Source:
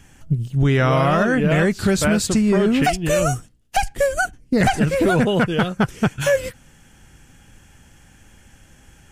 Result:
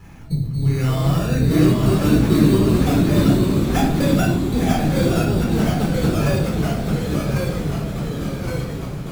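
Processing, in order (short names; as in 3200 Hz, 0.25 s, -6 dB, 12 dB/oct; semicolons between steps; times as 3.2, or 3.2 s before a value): octaver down 2 oct, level -1 dB; HPF 160 Hz 6 dB/oct; low shelf 250 Hz +12 dB; compressor 6:1, threshold -24 dBFS, peak gain reduction 15.5 dB; 1.49–2.58 small resonant body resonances 300/1100 Hz, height 16 dB; sample-rate reducer 4200 Hz, jitter 0%; diffused feedback echo 0.936 s, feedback 45%, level -8 dB; reverb RT60 0.50 s, pre-delay 11 ms, DRR -2.5 dB; echoes that change speed 0.723 s, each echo -1 st, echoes 3; gain -3 dB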